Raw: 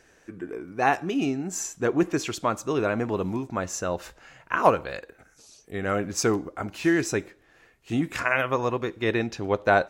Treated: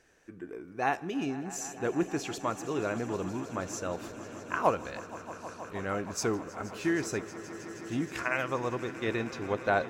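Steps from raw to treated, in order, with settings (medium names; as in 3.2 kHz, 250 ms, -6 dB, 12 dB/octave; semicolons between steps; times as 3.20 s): echo with a slow build-up 158 ms, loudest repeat 5, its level -18 dB; trim -7 dB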